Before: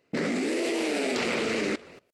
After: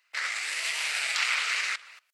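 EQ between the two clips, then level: HPF 1200 Hz 24 dB/oct; +5.0 dB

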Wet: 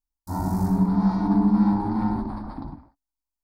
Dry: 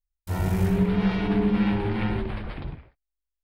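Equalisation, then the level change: EQ curve 140 Hz 0 dB, 280 Hz +15 dB, 430 Hz -8 dB, 900 Hz +13 dB, 2900 Hz -23 dB, 4500 Hz +4 dB; -4.5 dB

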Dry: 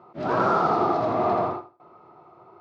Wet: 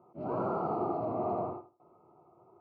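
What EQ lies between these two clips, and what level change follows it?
running mean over 25 samples; -7.5 dB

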